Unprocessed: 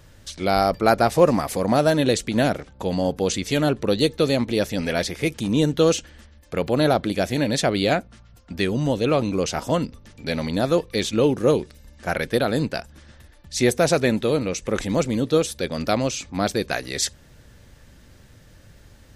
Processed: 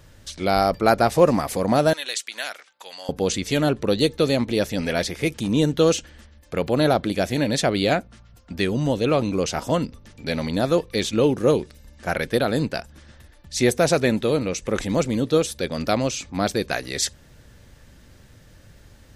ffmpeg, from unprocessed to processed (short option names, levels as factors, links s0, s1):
-filter_complex "[0:a]asettb=1/sr,asplit=3[s0][s1][s2];[s0]atrim=end=1.934[s3];[s1]atrim=start=1.93:end=3.09,asetpts=PTS-STARTPTS,afade=t=in:d=0.004:c=qsin,afade=t=out:st=1.156:d=0.004:c=qsin,highpass=1500[s4];[s2]atrim=start=3.086[s5];[s3][s4]acrossfade=d=0.004:c1=hsin:c2=qsin[s6];[s6][s5]acrossfade=d=0.004:c1=qsin:c2=hsin"